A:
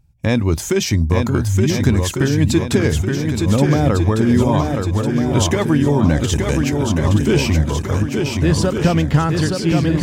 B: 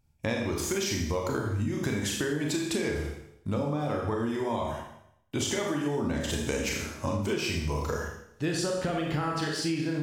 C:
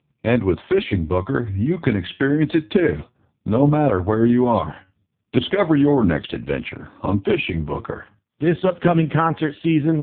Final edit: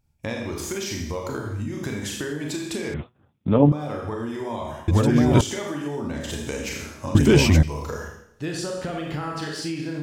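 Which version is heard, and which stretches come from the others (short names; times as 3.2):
B
2.94–3.72 from C
4.88–5.41 from A
7.15–7.63 from A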